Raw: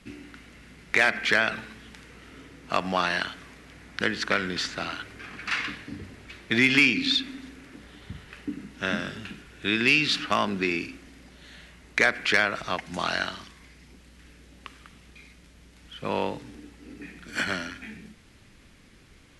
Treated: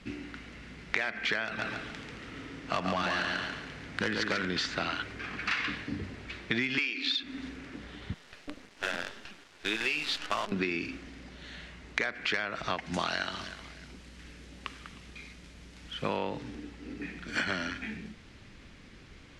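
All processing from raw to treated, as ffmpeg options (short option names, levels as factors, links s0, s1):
-filter_complex "[0:a]asettb=1/sr,asplit=3[s0][s1][s2];[s0]atrim=end=1.454[s3];[s1]atrim=start=1.45:end=4.45,asetpts=PTS-STARTPTS,afade=t=in:d=0.004:c=qsin,afade=t=out:st=2.996:d=0.004:c=qsin,asoftclip=type=hard:threshold=0.0891,aecho=1:1:140|280|420|560|700:0.631|0.24|0.0911|0.0346|0.0132,atrim=end_sample=132300[s4];[s2]atrim=start=4.446[s5];[s3][s4]acrossfade=d=0.004:c1=hsin:c2=qsin[s6];[s6][s5]acrossfade=d=0.004:c1=qsin:c2=hsin,asettb=1/sr,asplit=3[s7][s8][s9];[s7]atrim=end=6.784[s10];[s8]atrim=start=6.78:end=7.23,asetpts=PTS-STARTPTS,afade=t=in:d=0.004:c=qsin,afade=t=out:st=0.446:d=0.004:c=qsin,highpass=f=310:w=0.5412,highpass=f=310:w=1.3066,equalizer=f=3000:w=0.4:g=4[s11];[s9]atrim=start=7.226[s12];[s10][s11]acrossfade=d=0.004:c1=hsin:c2=qsin[s13];[s13][s12]acrossfade=d=0.004:c1=qsin:c2=hsin,asettb=1/sr,asplit=3[s14][s15][s16];[s14]atrim=end=8.144[s17];[s15]atrim=start=8.14:end=10.52,asetpts=PTS-STARTPTS,afade=t=in:d=0.004:c=qsin,afade=t=out:st=2.376:d=0.004:c=qsin,highpass=360,flanger=delay=4.7:depth=7.7:regen=43:speed=1.7:shape=triangular,acrusher=bits=6:dc=4:mix=0:aa=0.000001[s18];[s16]atrim=start=10.516[s19];[s17][s18]acrossfade=d=0.004:c1=hsin:c2=qsin[s20];[s20][s19]acrossfade=d=0.004:c1=qsin:c2=hsin,asettb=1/sr,asplit=3[s21][s22][s23];[s21]atrim=end=12.934[s24];[s22]atrim=start=12.93:end=16.17,asetpts=PTS-STARTPTS,afade=t=in:d=0.004:c=qsin,afade=t=out:st=3.236:d=0.004:c=qsin,highshelf=f=7500:g=9.5,aecho=1:1:309|618:0.0944|0.0302,atrim=end_sample=142884[s25];[s23]atrim=start=16.166[s26];[s24][s25]acrossfade=d=0.004:c1=hsin:c2=qsin[s27];[s27][s26]acrossfade=d=0.004:c1=qsin:c2=hsin,acompressor=threshold=0.0355:ratio=16,lowpass=5900,volume=1.33"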